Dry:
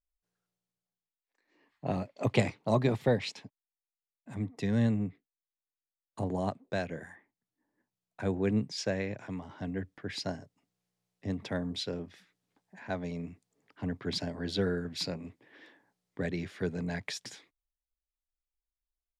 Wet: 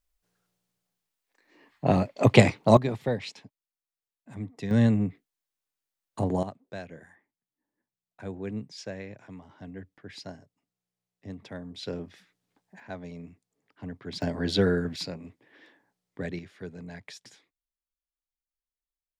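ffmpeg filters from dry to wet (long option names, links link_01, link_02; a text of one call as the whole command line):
ffmpeg -i in.wav -af "asetnsamples=nb_out_samples=441:pad=0,asendcmd='2.77 volume volume -1.5dB;4.71 volume volume 6dB;6.43 volume volume -6dB;11.83 volume volume 2dB;12.8 volume volume -4dB;14.22 volume volume 7dB;14.96 volume volume -0.5dB;16.39 volume volume -7dB',volume=10dB" out.wav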